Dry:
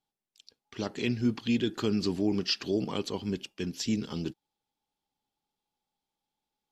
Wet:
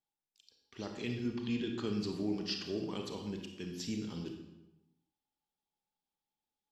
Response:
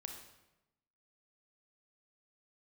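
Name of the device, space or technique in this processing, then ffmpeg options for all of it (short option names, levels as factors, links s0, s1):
bathroom: -filter_complex "[0:a]asettb=1/sr,asplit=3[s0][s1][s2];[s0]atrim=end=1.274[s3];[s1]atrim=start=1.27:end=1.87,asetpts=PTS-STARTPTS,afade=t=in:d=0.004:c=qsin,afade=t=out:st=0.596:d=0.004:c=qsin,lowpass=6600[s4];[s2]atrim=start=1.866[s5];[s3][s4]acrossfade=d=0.004:c1=hsin:c2=qsin[s6];[s6][s5]acrossfade=d=0.004:c1=qsin:c2=hsin[s7];[1:a]atrim=start_sample=2205[s8];[s7][s8]afir=irnorm=-1:irlink=0,volume=0.631"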